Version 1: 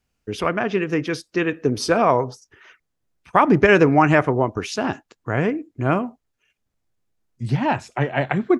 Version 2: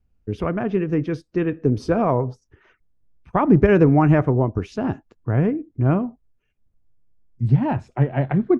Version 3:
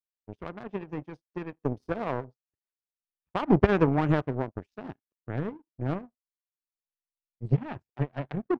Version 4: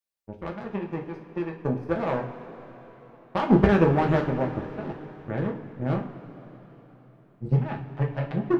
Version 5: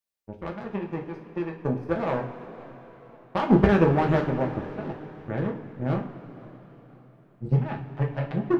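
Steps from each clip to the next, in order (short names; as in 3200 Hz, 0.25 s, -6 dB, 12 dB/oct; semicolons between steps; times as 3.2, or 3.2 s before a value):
tilt -4 dB/oct; gain -6 dB
power-law curve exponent 2
in parallel at -8 dB: hard clip -18.5 dBFS, distortion -8 dB; on the sum: two-slope reverb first 0.3 s, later 4.2 s, from -18 dB, DRR 0 dB; gain -1.5 dB
warbling echo 0.514 s, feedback 37%, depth 151 cents, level -24 dB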